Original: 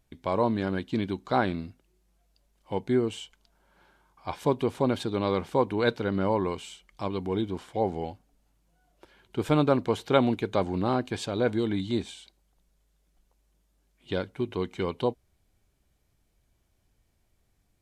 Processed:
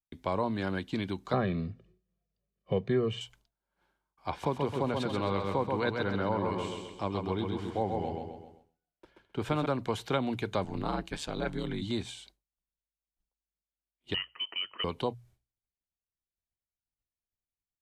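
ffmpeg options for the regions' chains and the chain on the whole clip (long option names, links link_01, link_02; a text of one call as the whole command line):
ffmpeg -i in.wav -filter_complex "[0:a]asettb=1/sr,asplit=3[link_01][link_02][link_03];[link_01]atrim=end=1.334[link_04];[link_02]atrim=start=1.33:end=3.21,asetpts=PTS-STARTPTS,afade=type=in:duration=0.004:curve=qsin,afade=type=out:start_time=1.876:duration=0.004:curve=qsin,highpass=110,lowpass=3000,lowshelf=frequency=480:width_type=q:width=1.5:gain=11,aecho=1:1:1.7:1,atrim=end_sample=82908[link_05];[link_03]atrim=start=3.206[link_06];[link_04][link_05]acrossfade=duration=0.004:curve1=hsin:curve2=qsin[link_07];[link_07][link_06]acrossfade=duration=0.004:curve1=qsin:curve2=hsin,asettb=1/sr,asplit=3[link_08][link_09][link_10];[link_08]atrim=end=4.304[link_11];[link_09]atrim=start=4.3:end=9.66,asetpts=PTS-STARTPTS,afade=type=in:duration=0.004:curve=qsin,afade=type=out:start_time=5.356:duration=0.004:curve=qsin,lowpass=frequency=3800:poles=1,aecho=1:1:131|262|393|524|655|786:0.596|0.268|0.121|0.0543|0.0244|0.011,atrim=end_sample=236376[link_12];[link_10]atrim=start=9.656[link_13];[link_11][link_12]acrossfade=duration=0.004:curve1=hsin:curve2=qsin[link_14];[link_14][link_13]acrossfade=duration=0.004:curve1=qsin:curve2=hsin,asettb=1/sr,asplit=3[link_15][link_16][link_17];[link_15]atrim=end=10.644[link_18];[link_16]atrim=start=10.64:end=11.82,asetpts=PTS-STARTPTS,afade=type=in:duration=0.004:curve=qsin,afade=type=out:start_time=1.176:duration=0.004:curve=qsin,equalizer=frequency=430:width_type=o:width=0.84:gain=-5,aeval=exprs='val(0)*sin(2*PI*75*n/s)':channel_layout=same[link_19];[link_17]atrim=start=11.816[link_20];[link_18][link_19]acrossfade=duration=0.004:curve1=hsin:curve2=qsin[link_21];[link_21][link_20]acrossfade=duration=0.004:curve1=qsin:curve2=hsin,asettb=1/sr,asplit=3[link_22][link_23][link_24];[link_22]atrim=end=14.144[link_25];[link_23]atrim=start=14.14:end=14.84,asetpts=PTS-STARTPTS,afade=type=in:duration=0.004:curve=qsin,afade=type=out:start_time=0.696:duration=0.004:curve=qsin,highpass=frequency=390:width=0.5412,highpass=frequency=390:width=1.3066,lowpass=frequency=2900:width_type=q:width=0.5098,lowpass=frequency=2900:width_type=q:width=0.6013,lowpass=frequency=2900:width_type=q:width=0.9,lowpass=frequency=2900:width_type=q:width=2.563,afreqshift=-3400[link_26];[link_24]atrim=start=14.836[link_27];[link_25][link_26]acrossfade=duration=0.004:curve1=hsin:curve2=qsin[link_28];[link_28][link_27]acrossfade=duration=0.004:curve1=qsin:curve2=hsin,agate=range=-33dB:threshold=-51dB:ratio=3:detection=peak,bandreject=frequency=60:width_type=h:width=6,bandreject=frequency=120:width_type=h:width=6,acrossover=split=210|590[link_29][link_30][link_31];[link_29]acompressor=threshold=-34dB:ratio=4[link_32];[link_30]acompressor=threshold=-37dB:ratio=4[link_33];[link_31]acompressor=threshold=-30dB:ratio=4[link_34];[link_32][link_33][link_34]amix=inputs=3:normalize=0" out.wav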